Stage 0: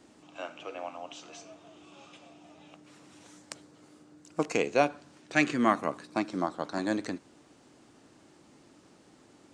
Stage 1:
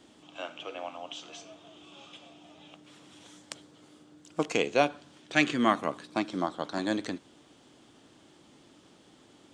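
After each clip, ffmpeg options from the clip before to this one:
ffmpeg -i in.wav -af "equalizer=frequency=3300:width=4:gain=10" out.wav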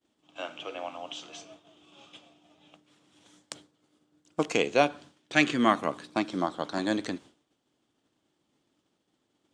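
ffmpeg -i in.wav -af "agate=range=-33dB:threshold=-45dB:ratio=3:detection=peak,volume=1.5dB" out.wav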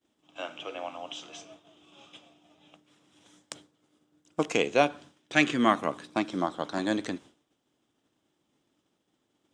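ffmpeg -i in.wav -af "bandreject=frequency=4400:width=11" out.wav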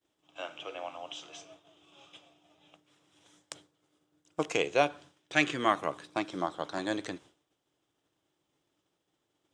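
ffmpeg -i in.wav -af "equalizer=frequency=230:width=3.7:gain=-13,volume=-2.5dB" out.wav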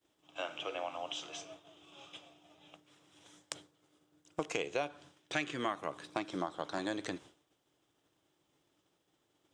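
ffmpeg -i in.wav -af "acompressor=threshold=-36dB:ratio=4,volume=2.5dB" out.wav

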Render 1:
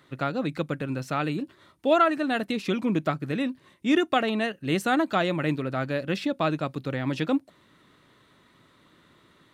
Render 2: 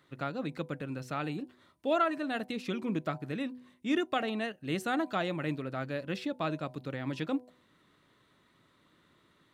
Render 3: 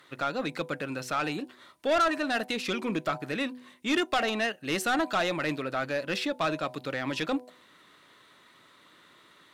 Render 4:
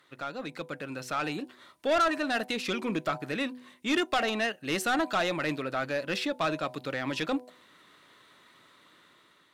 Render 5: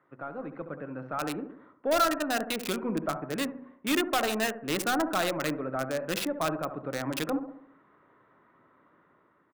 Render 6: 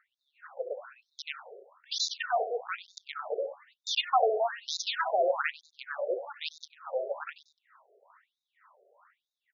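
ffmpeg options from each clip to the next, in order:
ffmpeg -i in.wav -af "bandreject=frequency=124.6:width_type=h:width=4,bandreject=frequency=249.2:width_type=h:width=4,bandreject=frequency=373.8:width_type=h:width=4,bandreject=frequency=498.4:width_type=h:width=4,bandreject=frequency=623:width_type=h:width=4,bandreject=frequency=747.6:width_type=h:width=4,bandreject=frequency=872.2:width_type=h:width=4,bandreject=frequency=996.8:width_type=h:width=4,volume=-7.5dB" out.wav
ffmpeg -i in.wav -filter_complex "[0:a]asplit=2[link_01][link_02];[link_02]highpass=frequency=720:poles=1,volume=17dB,asoftclip=type=tanh:threshold=-17dB[link_03];[link_01][link_03]amix=inputs=2:normalize=0,lowpass=frequency=3700:poles=1,volume=-6dB,aemphasis=mode=production:type=cd" out.wav
ffmpeg -i in.wav -af "dynaudnorm=framelen=390:gausssize=5:maxgain=6dB,volume=-6.5dB" out.wav
ffmpeg -i in.wav -filter_complex "[0:a]asplit=2[link_01][link_02];[link_02]adelay=69,lowpass=frequency=1900:poles=1,volume=-9dB,asplit=2[link_03][link_04];[link_04]adelay=69,lowpass=frequency=1900:poles=1,volume=0.52,asplit=2[link_05][link_06];[link_06]adelay=69,lowpass=frequency=1900:poles=1,volume=0.52,asplit=2[link_07][link_08];[link_08]adelay=69,lowpass=frequency=1900:poles=1,volume=0.52,asplit=2[link_09][link_10];[link_10]adelay=69,lowpass=frequency=1900:poles=1,volume=0.52,asplit=2[link_11][link_12];[link_12]adelay=69,lowpass=frequency=1900:poles=1,volume=0.52[link_13];[link_01][link_03][link_05][link_07][link_09][link_11][link_13]amix=inputs=7:normalize=0,acrossover=split=100|1600[link_14][link_15][link_16];[link_16]acrusher=bits=4:mix=0:aa=0.000001[link_17];[link_14][link_15][link_17]amix=inputs=3:normalize=0" out.wav
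ffmpeg -i in.wav -filter_complex "[0:a]asplit=4[link_01][link_02][link_03][link_04];[link_02]adelay=96,afreqshift=37,volume=-16dB[link_05];[link_03]adelay=192,afreqshift=74,volume=-24.9dB[link_06];[link_04]adelay=288,afreqshift=111,volume=-33.7dB[link_07];[link_01][link_05][link_06][link_07]amix=inputs=4:normalize=0,afftfilt=real='re*between(b*sr/1024,510*pow(5100/510,0.5+0.5*sin(2*PI*1.1*pts/sr))/1.41,510*pow(5100/510,0.5+0.5*sin(2*PI*1.1*pts/sr))*1.41)':imag='im*between(b*sr/1024,510*pow(5100/510,0.5+0.5*sin(2*PI*1.1*pts/sr))/1.41,510*pow(5100/510,0.5+0.5*sin(2*PI*1.1*pts/sr))*1.41)':win_size=1024:overlap=0.75,volume=6dB" out.wav

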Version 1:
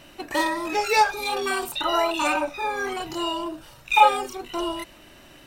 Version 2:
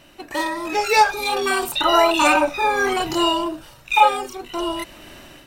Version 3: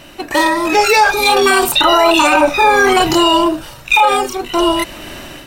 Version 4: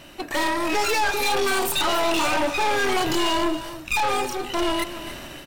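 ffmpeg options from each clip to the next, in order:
ffmpeg -i in.wav -af "dynaudnorm=framelen=270:gausssize=5:maxgain=15dB,volume=-1.5dB" out.wav
ffmpeg -i in.wav -af "alimiter=level_in=12.5dB:limit=-1dB:release=50:level=0:latency=1,volume=-1dB" out.wav
ffmpeg -i in.wav -af "aeval=exprs='(tanh(6.31*val(0)+0.55)-tanh(0.55))/6.31':channel_layout=same,aecho=1:1:277:0.211,volume=-4dB" out.wav

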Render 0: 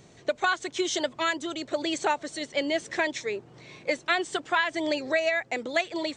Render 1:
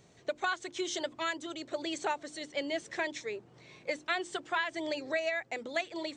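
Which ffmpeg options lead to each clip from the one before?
ffmpeg -i in.wav -af "bandreject=frequency=50:width_type=h:width=6,bandreject=frequency=100:width_type=h:width=6,bandreject=frequency=150:width_type=h:width=6,bandreject=frequency=200:width_type=h:width=6,bandreject=frequency=250:width_type=h:width=6,bandreject=frequency=300:width_type=h:width=6,bandreject=frequency=350:width_type=h:width=6,volume=-7dB" out.wav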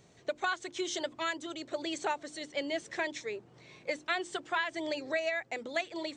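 ffmpeg -i in.wav -af anull out.wav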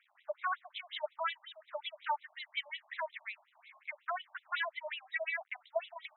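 ffmpeg -i in.wav -af "aeval=exprs='val(0)*gte(abs(val(0)),0.00119)':channel_layout=same,afftfilt=real='re*between(b*sr/1024,790*pow(2900/790,0.5+0.5*sin(2*PI*5.5*pts/sr))/1.41,790*pow(2900/790,0.5+0.5*sin(2*PI*5.5*pts/sr))*1.41)':imag='im*between(b*sr/1024,790*pow(2900/790,0.5+0.5*sin(2*PI*5.5*pts/sr))/1.41,790*pow(2900/790,0.5+0.5*sin(2*PI*5.5*pts/sr))*1.41)':win_size=1024:overlap=0.75,volume=2dB" out.wav

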